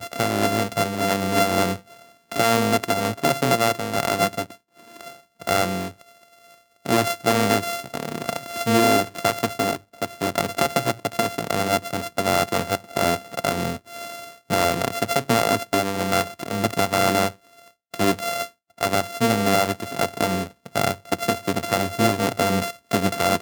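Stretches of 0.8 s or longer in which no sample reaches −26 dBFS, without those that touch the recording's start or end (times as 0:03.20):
0:05.88–0:06.86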